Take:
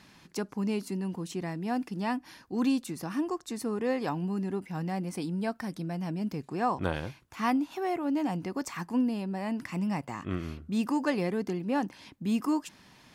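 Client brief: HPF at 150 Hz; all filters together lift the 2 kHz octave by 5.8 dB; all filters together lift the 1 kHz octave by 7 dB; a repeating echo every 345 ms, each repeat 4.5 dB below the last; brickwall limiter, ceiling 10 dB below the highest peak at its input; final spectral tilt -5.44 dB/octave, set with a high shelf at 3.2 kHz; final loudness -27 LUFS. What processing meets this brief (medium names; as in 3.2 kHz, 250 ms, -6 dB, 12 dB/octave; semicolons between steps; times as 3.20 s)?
high-pass 150 Hz; peaking EQ 1 kHz +8 dB; peaking EQ 2 kHz +3.5 dB; treble shelf 3.2 kHz +3.5 dB; peak limiter -20 dBFS; feedback delay 345 ms, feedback 60%, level -4.5 dB; trim +3 dB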